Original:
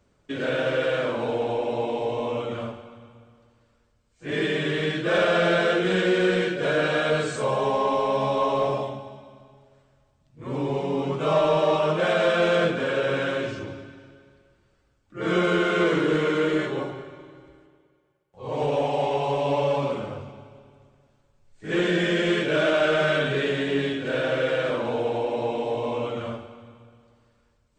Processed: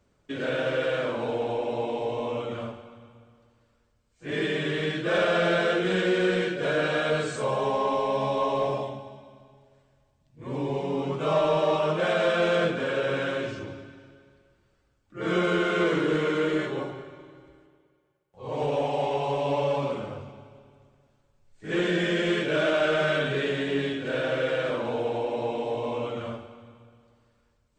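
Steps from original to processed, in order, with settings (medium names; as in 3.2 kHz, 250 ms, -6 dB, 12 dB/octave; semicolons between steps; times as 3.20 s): 7.99–10.86 s: band-stop 1.3 kHz, Q 7.3; trim -2.5 dB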